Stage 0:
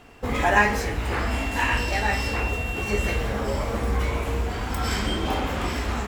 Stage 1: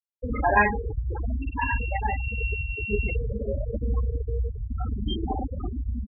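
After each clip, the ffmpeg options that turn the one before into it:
-af "bandreject=f=1.8k:w=17,afftfilt=real='re*gte(hypot(re,im),0.2)':imag='im*gte(hypot(re,im),0.2)':win_size=1024:overlap=0.75"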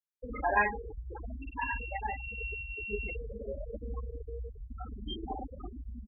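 -af "equalizer=f=110:t=o:w=1.6:g=-15,volume=-6.5dB"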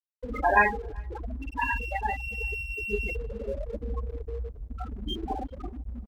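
-filter_complex "[0:a]asplit=2[a][b];[b]adelay=384.8,volume=-29dB,highshelf=f=4k:g=-8.66[c];[a][c]amix=inputs=2:normalize=0,aeval=exprs='sgn(val(0))*max(abs(val(0))-0.00126,0)':c=same,volume=6.5dB"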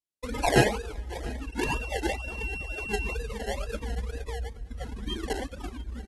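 -filter_complex "[0:a]acrossover=split=170|2100[a][b][c];[b]acrusher=samples=29:mix=1:aa=0.000001:lfo=1:lforange=17.4:lforate=2.1[d];[a][d][c]amix=inputs=3:normalize=0,aecho=1:1:687:0.1" -ar 32000 -c:a aac -b:a 32k

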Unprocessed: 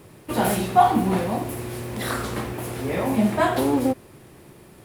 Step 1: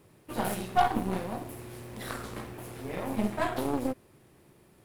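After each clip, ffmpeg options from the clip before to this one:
-af "aeval=exprs='0.668*(cos(1*acos(clip(val(0)/0.668,-1,1)))-cos(1*PI/2))+0.0668*(cos(6*acos(clip(val(0)/0.668,-1,1)))-cos(6*PI/2))+0.0299*(cos(7*acos(clip(val(0)/0.668,-1,1)))-cos(7*PI/2))':c=same,volume=-8.5dB"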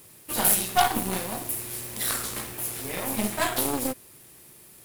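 -af "crystalizer=i=7:c=0"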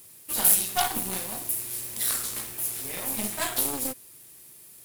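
-af "highshelf=f=3.2k:g=9,volume=-6.5dB"

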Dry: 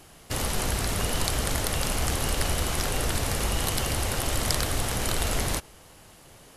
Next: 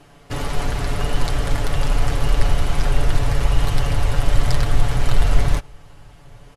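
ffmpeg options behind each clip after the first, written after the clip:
-af "aemphasis=mode=reproduction:type=75kf,aecho=1:1:7:0.65,asubboost=boost=4:cutoff=120,volume=3dB"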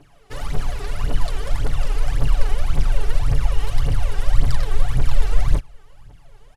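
-af "aphaser=in_gain=1:out_gain=1:delay=2.7:decay=0.72:speed=1.8:type=triangular,volume=-9dB"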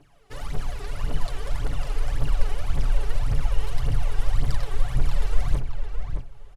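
-filter_complex "[0:a]asplit=2[a][b];[b]adelay=618,lowpass=f=2.8k:p=1,volume=-6.5dB,asplit=2[c][d];[d]adelay=618,lowpass=f=2.8k:p=1,volume=0.18,asplit=2[e][f];[f]adelay=618,lowpass=f=2.8k:p=1,volume=0.18[g];[a][c][e][g]amix=inputs=4:normalize=0,volume=-5.5dB"

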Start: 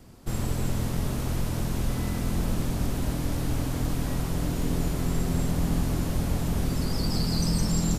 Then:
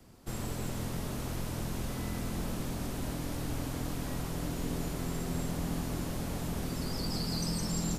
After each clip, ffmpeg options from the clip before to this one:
-filter_complex "[0:a]lowshelf=f=230:g=-3.5,acrossover=split=140|940|4100[a][b][c][d];[a]alimiter=level_in=3dB:limit=-24dB:level=0:latency=1:release=236,volume=-3dB[e];[e][b][c][d]amix=inputs=4:normalize=0,volume=-4.5dB"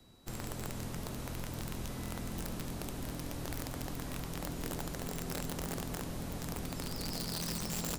-af "aeval=exprs='(mod(20*val(0)+1,2)-1)/20':c=same,aeval=exprs='val(0)+0.000794*sin(2*PI*3900*n/s)':c=same,volume=-4.5dB"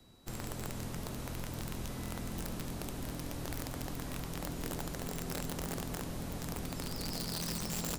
-af anull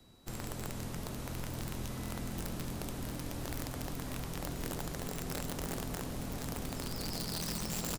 -af "aecho=1:1:1033:0.299"

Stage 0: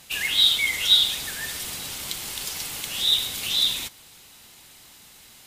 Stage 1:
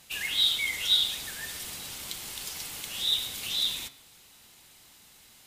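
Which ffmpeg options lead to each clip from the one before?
-af "bandreject=f=136.1:t=h:w=4,bandreject=f=272.2:t=h:w=4,bandreject=f=408.3:t=h:w=4,bandreject=f=544.4:t=h:w=4,bandreject=f=680.5:t=h:w=4,bandreject=f=816.6:t=h:w=4,bandreject=f=952.7:t=h:w=4,bandreject=f=1.0888k:t=h:w=4,bandreject=f=1.2249k:t=h:w=4,bandreject=f=1.361k:t=h:w=4,bandreject=f=1.4971k:t=h:w=4,bandreject=f=1.6332k:t=h:w=4,bandreject=f=1.7693k:t=h:w=4,bandreject=f=1.9054k:t=h:w=4,bandreject=f=2.0415k:t=h:w=4,bandreject=f=2.1776k:t=h:w=4,bandreject=f=2.3137k:t=h:w=4,bandreject=f=2.4498k:t=h:w=4,bandreject=f=2.5859k:t=h:w=4,bandreject=f=2.722k:t=h:w=4,bandreject=f=2.8581k:t=h:w=4,bandreject=f=2.9942k:t=h:w=4,bandreject=f=3.1303k:t=h:w=4,bandreject=f=3.2664k:t=h:w=4,bandreject=f=3.4025k:t=h:w=4,bandreject=f=3.5386k:t=h:w=4,bandreject=f=3.6747k:t=h:w=4,bandreject=f=3.8108k:t=h:w=4,bandreject=f=3.9469k:t=h:w=4,bandreject=f=4.083k:t=h:w=4,bandreject=f=4.2191k:t=h:w=4,bandreject=f=4.3552k:t=h:w=4,bandreject=f=4.4913k:t=h:w=4,bandreject=f=4.6274k:t=h:w=4,bandreject=f=4.7635k:t=h:w=4,bandreject=f=4.8996k:t=h:w=4,bandreject=f=5.0357k:t=h:w=4,bandreject=f=5.1718k:t=h:w=4,bandreject=f=5.3079k:t=h:w=4,volume=-6dB"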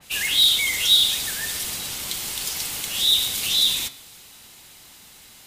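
-filter_complex "[0:a]acrossover=split=710|4300[a][b][c];[b]asoftclip=type=tanh:threshold=-29.5dB[d];[a][d][c]amix=inputs=3:normalize=0,adynamicequalizer=threshold=0.01:dfrequency=3000:dqfactor=0.7:tfrequency=3000:tqfactor=0.7:attack=5:release=100:ratio=0.375:range=2:mode=boostabove:tftype=highshelf,volume=8dB"

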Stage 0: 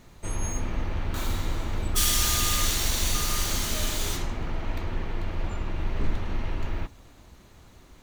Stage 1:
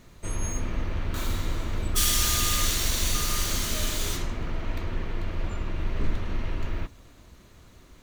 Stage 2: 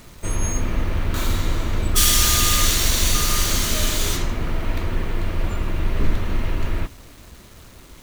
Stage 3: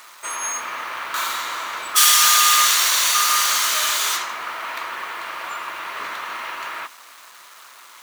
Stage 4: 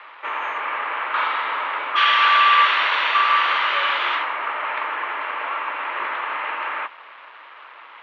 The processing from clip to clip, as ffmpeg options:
-af "equalizer=f=820:t=o:w=0.25:g=-7"
-af "acrusher=bits=8:mix=0:aa=0.000001,volume=7dB"
-af "highpass=f=1.1k:t=q:w=2,volume=3.5dB"
-af "highpass=f=380:t=q:w=0.5412,highpass=f=380:t=q:w=1.307,lowpass=f=3k:t=q:w=0.5176,lowpass=f=3k:t=q:w=0.7071,lowpass=f=3k:t=q:w=1.932,afreqshift=-51,volume=4dB"

